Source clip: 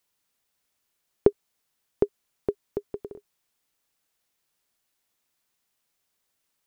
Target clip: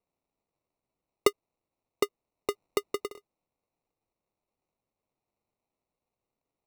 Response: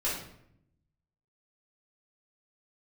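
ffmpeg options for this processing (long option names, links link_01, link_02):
-filter_complex "[0:a]acrossover=split=390 2200:gain=0.2 1 0.0794[link_01][link_02][link_03];[link_01][link_02][link_03]amix=inputs=3:normalize=0,acrusher=samples=27:mix=1:aa=0.000001,asplit=3[link_04][link_05][link_06];[link_04]afade=type=out:start_time=2.5:duration=0.02[link_07];[link_05]acontrast=86,afade=type=in:start_time=2.5:duration=0.02,afade=type=out:start_time=3.07:duration=0.02[link_08];[link_06]afade=type=in:start_time=3.07:duration=0.02[link_09];[link_07][link_08][link_09]amix=inputs=3:normalize=0"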